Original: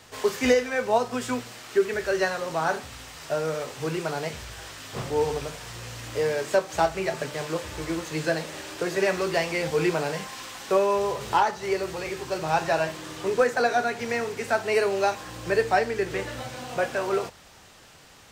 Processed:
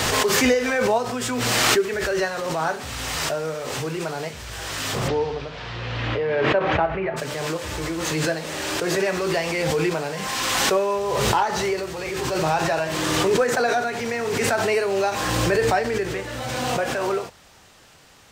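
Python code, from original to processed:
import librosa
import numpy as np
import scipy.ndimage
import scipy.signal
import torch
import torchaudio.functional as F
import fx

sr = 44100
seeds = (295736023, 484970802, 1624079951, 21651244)

y = fx.lowpass(x, sr, hz=fx.line((5.07, 5200.0), (7.16, 2300.0)), slope=24, at=(5.07, 7.16), fade=0.02)
y = fx.pre_swell(y, sr, db_per_s=20.0)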